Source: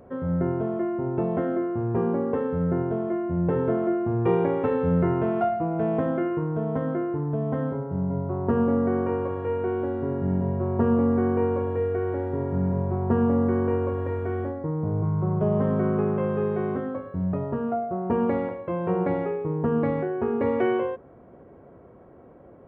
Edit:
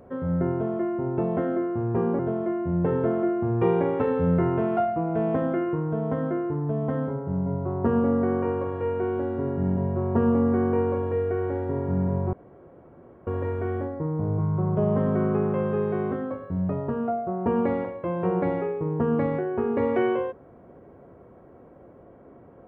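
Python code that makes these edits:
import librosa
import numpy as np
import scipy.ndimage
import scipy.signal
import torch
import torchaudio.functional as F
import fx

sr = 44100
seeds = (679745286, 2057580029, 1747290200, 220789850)

y = fx.edit(x, sr, fx.cut(start_s=2.19, length_s=0.64),
    fx.room_tone_fill(start_s=12.97, length_s=0.94), tone=tone)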